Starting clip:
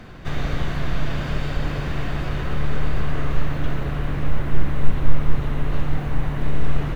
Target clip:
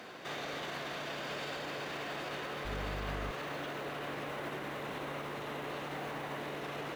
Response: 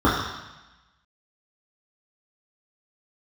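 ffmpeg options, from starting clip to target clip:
-filter_complex "[0:a]highpass=460,equalizer=f=1.4k:t=o:w=1.6:g=-4,alimiter=level_in=8.5dB:limit=-24dB:level=0:latency=1:release=50,volume=-8.5dB,asettb=1/sr,asplit=3[a][b][c];[a]atrim=end=2.654[d];[b]atrim=start=2.65:end=3.31,asetpts=PTS-STARTPTS,afade=t=in:d=0.004:c=qsin,afade=t=out:st=0.656:d=0.004:c=qsin,aeval=exprs='val(0)+0.01*(sin(2*PI*50*n/s)+sin(2*PI*2*50*n/s)/2+sin(2*PI*3*50*n/s)/3+sin(2*PI*4*50*n/s)/4+sin(2*PI*5*50*n/s)/5)':c=same[e];[c]atrim=start=3.306[f];[d][e]acrossfade=d=0.004:c1=hsin:c2=qsin[g];[g][f]acrossfade=d=0.004:c1=qsin:c2=hsin,volume=1dB"

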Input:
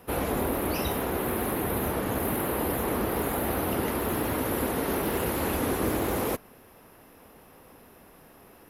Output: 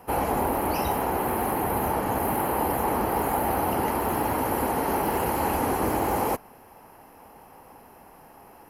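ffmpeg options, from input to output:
-af "equalizer=f=850:t=o:w=0.53:g=11.5,bandreject=f=3.6k:w=5"

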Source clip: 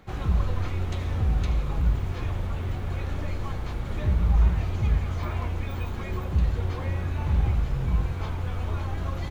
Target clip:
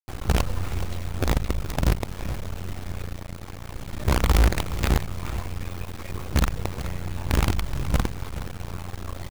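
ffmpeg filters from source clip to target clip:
-filter_complex "[0:a]acrusher=bits=4:dc=4:mix=0:aa=0.000001,asplit=2[a][b];[b]aecho=0:1:423:0.224[c];[a][c]amix=inputs=2:normalize=0"

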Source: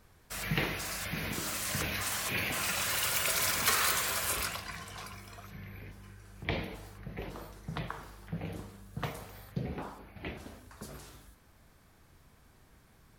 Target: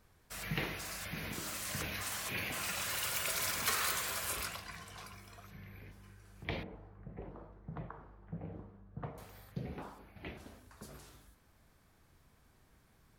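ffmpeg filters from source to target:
-filter_complex "[0:a]asettb=1/sr,asplit=3[a][b][c];[a]atrim=end=6.634[d];[b]atrim=start=6.63:end=9.18,asetpts=PTS-STARTPTS,afade=t=in:d=0.004:c=qsin,afade=t=out:st=2.546:d=0.004:c=qsin,lowpass=1.1k[e];[c]atrim=start=9.176[f];[d][e]acrossfade=d=0.004:c1=hsin:c2=qsin[g];[g][f]acrossfade=d=0.004:c1=qsin:c2=hsin,volume=-5.5dB"

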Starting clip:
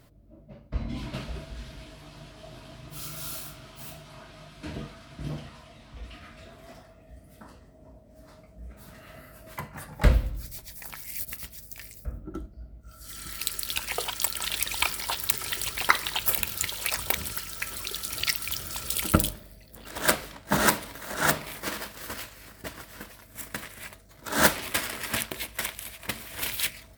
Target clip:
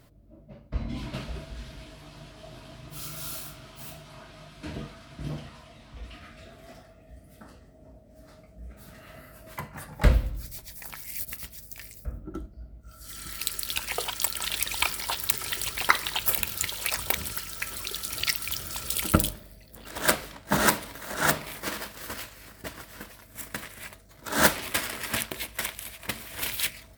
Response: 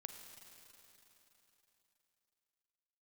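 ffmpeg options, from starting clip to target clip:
-filter_complex "[0:a]asettb=1/sr,asplit=3[a][b][c];[a]atrim=end=6.264[d];[b]atrim=start=6.26:end=8.98,asetpts=PTS-STARTPTS,afade=t=in:d=0.004:c=qsin,afade=t=out:st=2.716:d=0.004:c=qsin,bandreject=f=1k:w=5.6[e];[c]atrim=start=8.976[f];[d][e]acrossfade=d=0.004:c1=hsin:c2=qsin[g];[g][f]acrossfade=d=0.004:c1=qsin:c2=hsin"

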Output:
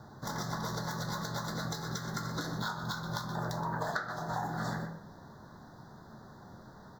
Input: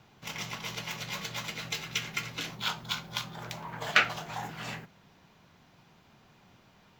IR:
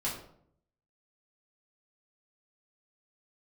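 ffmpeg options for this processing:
-filter_complex "[0:a]asuperstop=centerf=2600:order=8:qfactor=1.3,highshelf=f=11k:g=7,asplit=2[a][b];[b]adelay=122.4,volume=-13dB,highshelf=f=4k:g=-2.76[c];[a][c]amix=inputs=2:normalize=0,asplit=2[d][e];[1:a]atrim=start_sample=2205[f];[e][f]afir=irnorm=-1:irlink=0,volume=-10.5dB[g];[d][g]amix=inputs=2:normalize=0,acompressor=threshold=-37dB:ratio=16,highshelf=f=3.7k:g=-11,volume=7dB"

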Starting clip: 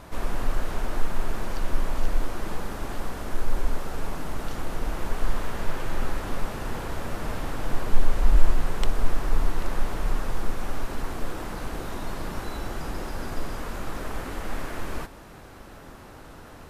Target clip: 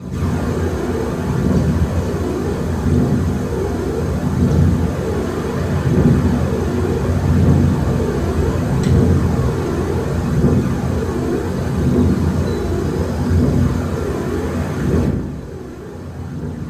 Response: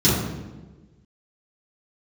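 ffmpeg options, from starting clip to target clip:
-filter_complex "[0:a]aphaser=in_gain=1:out_gain=1:delay=3.1:decay=0.53:speed=0.67:type=triangular[a];[1:a]atrim=start_sample=2205,asetrate=52920,aresample=44100[b];[a][b]afir=irnorm=-1:irlink=0,volume=-10.5dB"

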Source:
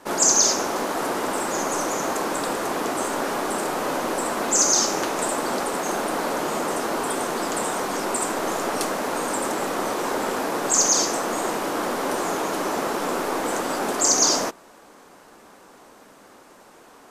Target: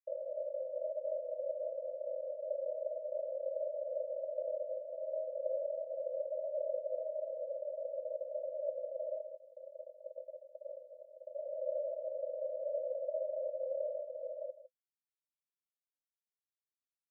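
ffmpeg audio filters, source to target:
-filter_complex "[0:a]acompressor=threshold=-26dB:ratio=1.5,alimiter=limit=-19.5dB:level=0:latency=1:release=27,asettb=1/sr,asplit=3[a][b][c];[a]atrim=end=9.174[d];[b]atrim=start=9.17:end=11.34,asetpts=PTS-STARTPTS,afade=t=in:d=0.004:c=qsin,afade=t=out:st=2.166:d=0.004:c=qsin,flanger=delay=15.5:depth=3.2:speed=1.9[e];[c]atrim=start=11.336[f];[d][e]acrossfade=d=0.004:c1=hsin:c2=qsin[g];[g][f]acrossfade=d=0.004:c1=qsin:c2=hsin,acrusher=bits=3:mix=0:aa=0.000001,flanger=delay=2:depth=3:regen=-69:speed=0.49:shape=triangular,aeval=exprs='abs(val(0))':c=same,asuperpass=centerf=570:order=12:qfactor=4.4,aecho=1:1:157:0.2,volume=10dB"

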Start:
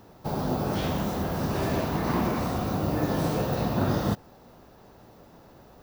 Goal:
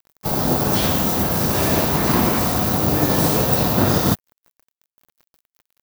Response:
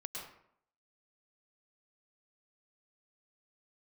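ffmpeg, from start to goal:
-filter_complex "[0:a]asplit=3[a][b][c];[b]asetrate=37084,aresample=44100,atempo=1.18921,volume=-14dB[d];[c]asetrate=58866,aresample=44100,atempo=0.749154,volume=-10dB[e];[a][d][e]amix=inputs=3:normalize=0,aeval=exprs='sgn(val(0))*max(abs(val(0))-0.00708,0)':c=same,crystalizer=i=2.5:c=0,volume=7.5dB"

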